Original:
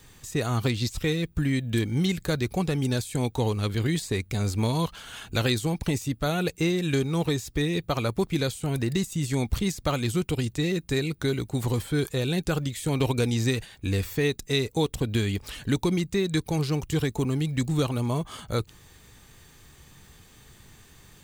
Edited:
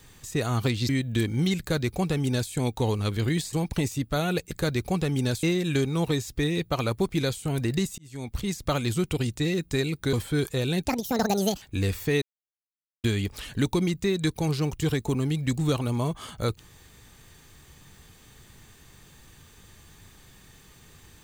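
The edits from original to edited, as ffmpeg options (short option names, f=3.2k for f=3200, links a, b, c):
-filter_complex "[0:a]asplit=11[a][b][c][d][e][f][g][h][i][j][k];[a]atrim=end=0.892[l];[b]atrim=start=1.468:end=4.112[m];[c]atrim=start=5.628:end=6.612[n];[d]atrim=start=2.168:end=3.092[o];[e]atrim=start=6.608:end=9.16,asetpts=PTS-STARTPTS,afade=t=out:st=2.548:d=0.004:c=hsin[p];[f]atrim=start=9.16:end=11.312,asetpts=PTS-STARTPTS,afade=t=in:d=0.69[q];[g]atrim=start=11.728:end=12.484[r];[h]atrim=start=12.48:end=13.72,asetpts=PTS-STARTPTS,asetrate=74088,aresample=44100[s];[i]atrim=start=13.716:end=14.32,asetpts=PTS-STARTPTS,afade=t=out:st=0.6:d=0.004:c=hsin[t];[j]atrim=start=14.32:end=15.14,asetpts=PTS-STARTPTS,volume=0[u];[k]atrim=start=15.14,asetpts=PTS-STARTPTS,afade=t=in:d=0.004:c=hsin[v];[l][m]acrossfade=d=0.004:c1=hsin:c2=hsin[w];[w][n]acrossfade=d=0.004:c1=hsin:c2=hsin[x];[x][o]acrossfade=d=0.004:c1=hsin:c2=hsin[y];[p][q]concat=n=2:v=0:a=1[z];[y][z]acrossfade=d=0.004:c1=hsin:c2=hsin[aa];[aa][r]acrossfade=d=0.004:c1=hsin:c2=hsin[ab];[ab][s]acrossfade=d=0.004:c1=hsin:c2=hsin[ac];[t][u][v]concat=n=3:v=0:a=1[ad];[ac][ad]acrossfade=d=0.004:c1=hsin:c2=hsin"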